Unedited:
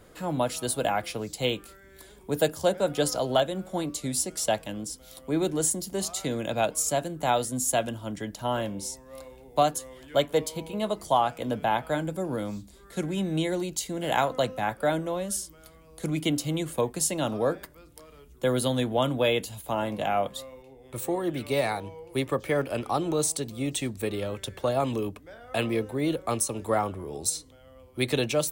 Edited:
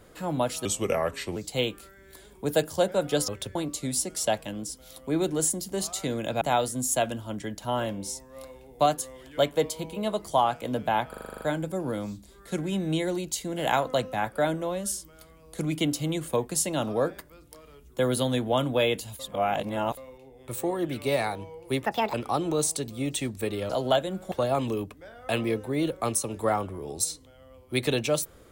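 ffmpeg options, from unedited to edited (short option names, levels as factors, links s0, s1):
-filter_complex "[0:a]asplit=20[s0][s1][s2][s3][s4][s5][s6][s7][s8][s9][s10][s11][s12][s13][s14][s15][s16][s17][s18][s19];[s0]atrim=end=0.654[s20];[s1]atrim=start=0.65:end=1.22,asetpts=PTS-STARTPTS,asetrate=35280,aresample=44100,atrim=end_sample=31421,asetpts=PTS-STARTPTS[s21];[s2]atrim=start=1.216:end=3.142[s22];[s3]atrim=start=24.298:end=24.572[s23];[s4]atrim=start=3.758:end=6.622[s24];[s5]atrim=start=7.178:end=11.902[s25];[s6]atrim=start=11.858:end=11.902[s26];[s7]atrim=start=11.858:end=11.902[s27];[s8]atrim=start=11.858:end=11.902[s28];[s9]atrim=start=11.858:end=11.902[s29];[s10]atrim=start=11.858:end=11.902[s30];[s11]atrim=start=11.858:end=11.902[s31];[s12]atrim=start=11.858:end=11.902[s32];[s13]atrim=start=11.858:end=19.642[s33];[s14]atrim=start=19.638:end=20.422,asetpts=PTS-STARTPTS,areverse[s34];[s15]atrim=start=20.418:end=22.304[s35];[s16]atrim=start=22.3:end=22.74,asetpts=PTS-STARTPTS,asetrate=68355,aresample=44100[s36];[s17]atrim=start=22.736:end=24.302[s37];[s18]atrim=start=3.138:end=3.762[s38];[s19]atrim=start=24.568[s39];[s20][s21]acrossfade=d=0.004:c1=hsin:c2=hsin[s40];[s40][s22]acrossfade=d=0.004:c1=hsin:c2=hsin[s41];[s41][s23]acrossfade=d=0.004:c1=hsin:c2=hsin[s42];[s42][s24]acrossfade=d=0.004:c1=hsin:c2=hsin[s43];[s43][s25]acrossfade=d=0.004:c1=hsin:c2=hsin[s44];[s44][s26]acrossfade=d=0.004:c1=hsin:c2=hsin[s45];[s45][s27]acrossfade=d=0.004:c1=hsin:c2=hsin[s46];[s46][s28]acrossfade=d=0.004:c1=hsin:c2=hsin[s47];[s47][s29]acrossfade=d=0.004:c1=hsin:c2=hsin[s48];[s48][s30]acrossfade=d=0.004:c1=hsin:c2=hsin[s49];[s49][s31]acrossfade=d=0.004:c1=hsin:c2=hsin[s50];[s50][s32]acrossfade=d=0.004:c1=hsin:c2=hsin[s51];[s51][s33]acrossfade=d=0.004:c1=hsin:c2=hsin[s52];[s52][s34]acrossfade=d=0.004:c1=hsin:c2=hsin[s53];[s53][s35]acrossfade=d=0.004:c1=hsin:c2=hsin[s54];[s54][s36]acrossfade=d=0.004:c1=hsin:c2=hsin[s55];[s55][s37]acrossfade=d=0.004:c1=hsin:c2=hsin[s56];[s56][s38]acrossfade=d=0.004:c1=hsin:c2=hsin[s57];[s57][s39]acrossfade=d=0.004:c1=hsin:c2=hsin"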